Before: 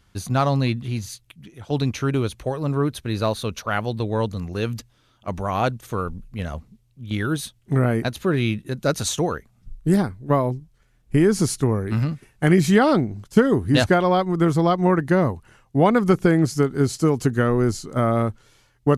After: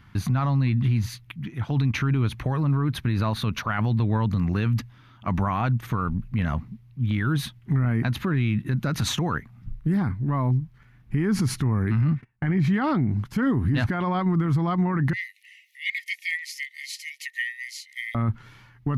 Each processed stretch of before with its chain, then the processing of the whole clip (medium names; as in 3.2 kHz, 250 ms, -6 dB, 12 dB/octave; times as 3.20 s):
12.01–12.74 s: low-pass 2.7 kHz 6 dB/octave + gate -47 dBFS, range -20 dB + transient shaper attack +11 dB, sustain -3 dB
15.13–18.15 s: brick-wall FIR high-pass 1.8 kHz + upward compressor, threshold -50 dBFS
whole clip: graphic EQ 125/250/500/1000/2000/8000 Hz +11/+7/-7/+7/+8/-11 dB; peak limiter -17.5 dBFS; trim +1.5 dB